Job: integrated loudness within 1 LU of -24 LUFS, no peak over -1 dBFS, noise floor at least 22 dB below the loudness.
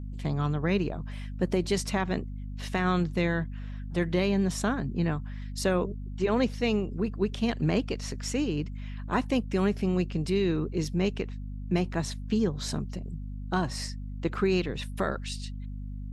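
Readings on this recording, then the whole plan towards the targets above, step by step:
hum 50 Hz; highest harmonic 250 Hz; hum level -34 dBFS; loudness -29.5 LUFS; peak level -13.5 dBFS; loudness target -24.0 LUFS
-> hum notches 50/100/150/200/250 Hz; trim +5.5 dB

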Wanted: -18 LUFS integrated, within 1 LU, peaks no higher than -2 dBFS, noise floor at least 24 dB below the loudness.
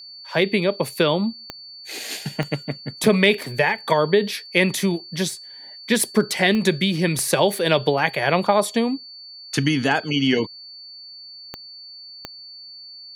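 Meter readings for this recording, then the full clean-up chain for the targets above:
clicks found 7; steady tone 4.5 kHz; tone level -38 dBFS; loudness -21.0 LUFS; peak level -2.5 dBFS; loudness target -18.0 LUFS
-> de-click; band-stop 4.5 kHz, Q 30; trim +3 dB; peak limiter -2 dBFS

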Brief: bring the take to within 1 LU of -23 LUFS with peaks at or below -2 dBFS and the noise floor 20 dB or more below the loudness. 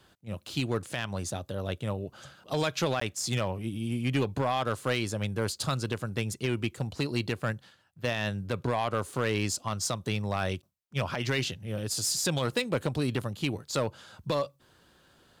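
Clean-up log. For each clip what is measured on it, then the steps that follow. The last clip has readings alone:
clipped samples 0.6%; clipping level -20.0 dBFS; dropouts 1; longest dropout 14 ms; loudness -31.5 LUFS; peak level -20.0 dBFS; loudness target -23.0 LUFS
-> clip repair -20 dBFS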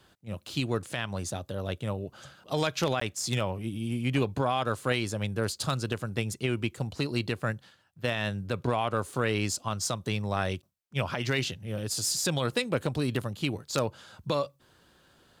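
clipped samples 0.0%; dropouts 1; longest dropout 14 ms
-> interpolate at 3.00 s, 14 ms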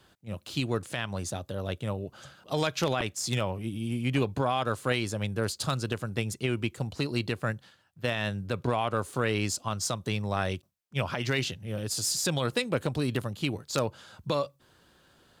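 dropouts 0; loudness -31.0 LUFS; peak level -11.0 dBFS; loudness target -23.0 LUFS
-> trim +8 dB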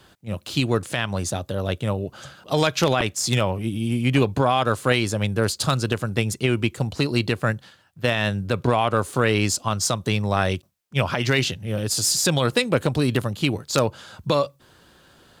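loudness -23.0 LUFS; peak level -3.0 dBFS; noise floor -59 dBFS

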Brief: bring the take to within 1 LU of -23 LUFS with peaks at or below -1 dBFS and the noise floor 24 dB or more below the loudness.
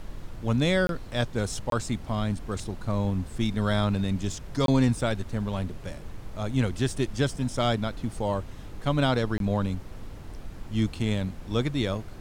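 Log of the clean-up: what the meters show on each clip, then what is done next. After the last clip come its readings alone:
dropouts 4; longest dropout 22 ms; noise floor -42 dBFS; noise floor target -52 dBFS; loudness -28.0 LUFS; peak level -12.0 dBFS; loudness target -23.0 LUFS
-> interpolate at 0.87/1.70/4.66/9.38 s, 22 ms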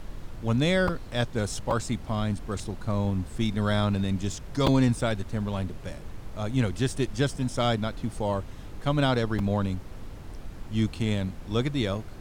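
dropouts 0; noise floor -42 dBFS; noise floor target -52 dBFS
-> noise print and reduce 10 dB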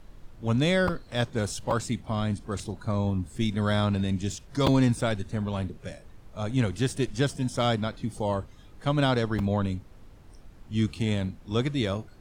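noise floor -50 dBFS; noise floor target -52 dBFS
-> noise print and reduce 6 dB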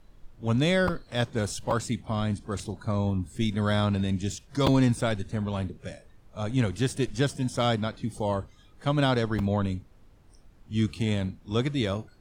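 noise floor -56 dBFS; loudness -28.0 LUFS; peak level -9.5 dBFS; loudness target -23.0 LUFS
-> trim +5 dB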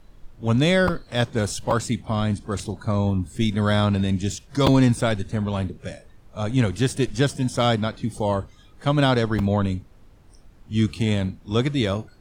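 loudness -23.0 LUFS; peak level -4.5 dBFS; noise floor -51 dBFS

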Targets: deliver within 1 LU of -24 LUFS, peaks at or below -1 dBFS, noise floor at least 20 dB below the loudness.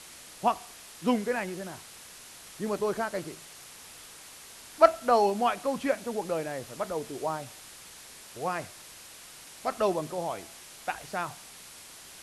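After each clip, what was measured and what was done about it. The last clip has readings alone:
noise floor -49 dBFS; noise floor target -50 dBFS; loudness -30.0 LUFS; peak level -5.5 dBFS; loudness target -24.0 LUFS
-> noise reduction 6 dB, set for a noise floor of -49 dBFS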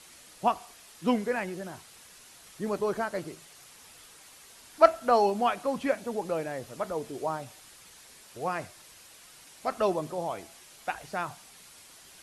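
noise floor -53 dBFS; loudness -30.0 LUFS; peak level -5.5 dBFS; loudness target -24.0 LUFS
-> trim +6 dB; peak limiter -1 dBFS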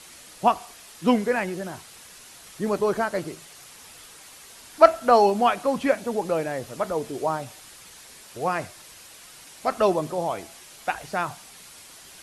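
loudness -24.5 LUFS; peak level -1.0 dBFS; noise floor -47 dBFS

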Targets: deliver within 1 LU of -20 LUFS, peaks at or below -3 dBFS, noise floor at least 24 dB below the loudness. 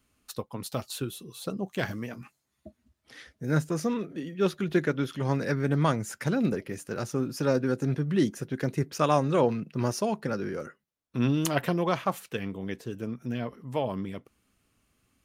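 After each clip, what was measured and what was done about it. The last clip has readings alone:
loudness -29.5 LUFS; peak level -9.5 dBFS; loudness target -20.0 LUFS
-> trim +9.5 dB; peak limiter -3 dBFS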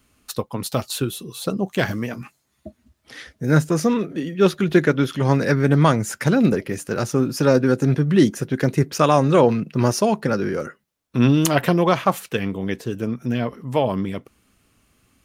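loudness -20.5 LUFS; peak level -3.0 dBFS; noise floor -68 dBFS

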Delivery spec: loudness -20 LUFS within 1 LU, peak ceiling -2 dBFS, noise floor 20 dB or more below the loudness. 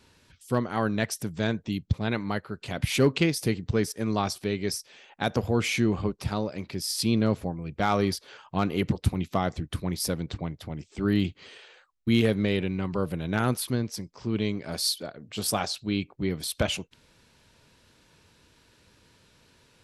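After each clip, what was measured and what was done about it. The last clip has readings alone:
loudness -28.5 LUFS; peak level -11.5 dBFS; loudness target -20.0 LUFS
-> trim +8.5 dB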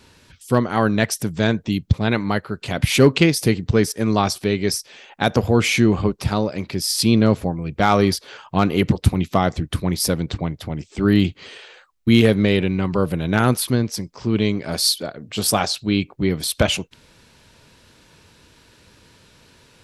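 loudness -20.0 LUFS; peak level -3.0 dBFS; noise floor -54 dBFS

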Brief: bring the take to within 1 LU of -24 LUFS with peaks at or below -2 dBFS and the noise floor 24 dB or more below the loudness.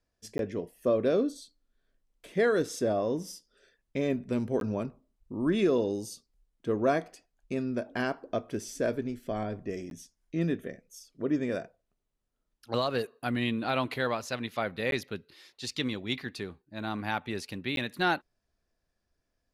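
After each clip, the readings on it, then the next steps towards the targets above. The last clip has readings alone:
dropouts 5; longest dropout 12 ms; loudness -31.5 LUFS; peak level -16.0 dBFS; loudness target -24.0 LUFS
-> interpolate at 0.38/4.60/9.90/14.91/17.76 s, 12 ms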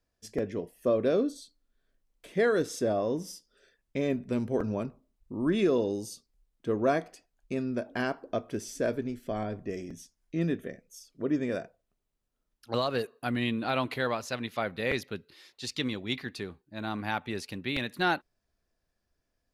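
dropouts 0; loudness -31.5 LUFS; peak level -15.0 dBFS; loudness target -24.0 LUFS
-> trim +7.5 dB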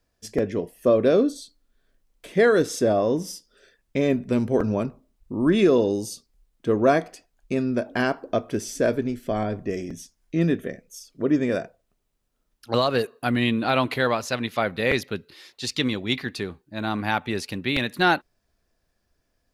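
loudness -24.0 LUFS; peak level -7.5 dBFS; noise floor -73 dBFS

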